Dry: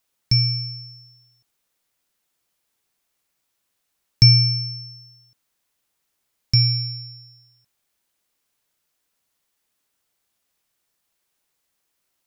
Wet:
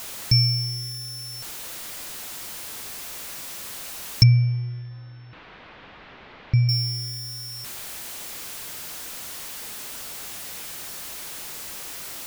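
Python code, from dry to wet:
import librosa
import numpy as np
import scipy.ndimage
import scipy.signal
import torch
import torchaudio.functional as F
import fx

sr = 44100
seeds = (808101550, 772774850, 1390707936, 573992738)

y = x + 0.5 * 10.0 ** (-29.0 / 20.0) * np.sign(x)
y = fx.bessel_lowpass(y, sr, hz=2100.0, order=6, at=(4.23, 6.69))
y = F.gain(torch.from_numpy(y), -1.0).numpy()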